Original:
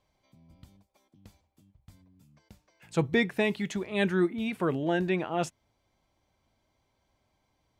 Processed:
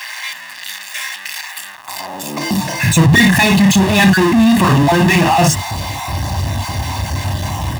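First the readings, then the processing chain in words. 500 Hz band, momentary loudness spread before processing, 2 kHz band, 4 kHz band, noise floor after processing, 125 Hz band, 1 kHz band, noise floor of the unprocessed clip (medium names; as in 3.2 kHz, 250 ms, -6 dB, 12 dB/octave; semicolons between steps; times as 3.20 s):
+11.0 dB, 7 LU, +20.0 dB, +23.0 dB, -32 dBFS, +23.0 dB, +22.0 dB, -76 dBFS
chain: random holes in the spectrogram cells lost 26%; on a send: early reflections 31 ms -5 dB, 52 ms -7.5 dB; on the sum: level rider gain up to 5.5 dB; power-law waveshaper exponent 0.35; comb 1.1 ms, depth 68%; in parallel at -1 dB: peak limiter -16.5 dBFS, peak gain reduction 11.5 dB; on the sum: high-pass sweep 1.8 kHz -> 81 Hz, 1.65–2.98 s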